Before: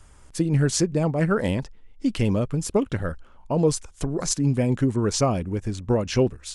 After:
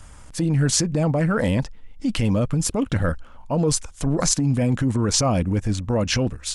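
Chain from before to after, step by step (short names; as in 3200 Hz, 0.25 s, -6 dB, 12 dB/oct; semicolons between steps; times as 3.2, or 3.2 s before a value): transient shaper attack -8 dB, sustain -2 dB; in parallel at -2 dB: negative-ratio compressor -27 dBFS, ratio -0.5; on the sum: bell 390 Hz -11 dB 0.21 oct; gain +1.5 dB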